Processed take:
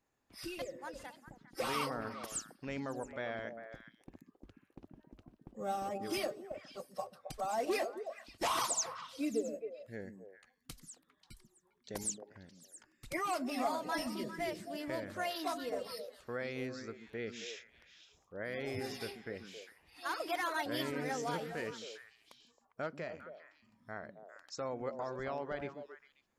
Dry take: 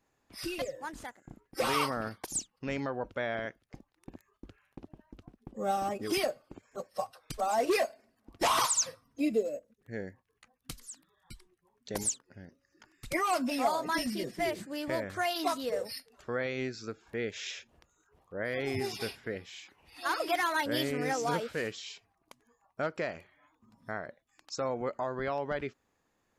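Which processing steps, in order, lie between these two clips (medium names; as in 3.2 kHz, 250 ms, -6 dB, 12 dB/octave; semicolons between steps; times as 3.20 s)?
22.96–23.96 s: harmonic-percussive split percussive -4 dB; repeats whose band climbs or falls 134 ms, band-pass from 210 Hz, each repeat 1.4 oct, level -3.5 dB; trim -6.5 dB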